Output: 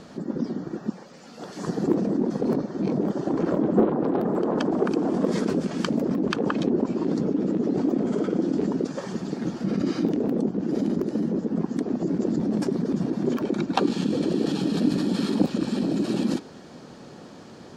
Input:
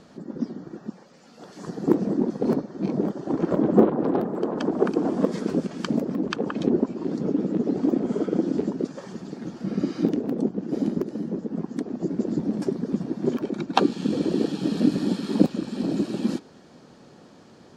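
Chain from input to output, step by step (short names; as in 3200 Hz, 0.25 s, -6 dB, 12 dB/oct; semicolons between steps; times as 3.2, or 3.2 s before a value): in parallel at -1 dB: negative-ratio compressor -29 dBFS, ratio -0.5; on the sum: soft clip -5.5 dBFS, distortion -25 dB; gain -2 dB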